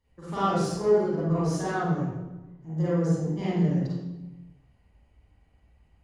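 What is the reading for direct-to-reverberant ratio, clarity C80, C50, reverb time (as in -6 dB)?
-11.5 dB, 0.5 dB, -5.0 dB, 1.1 s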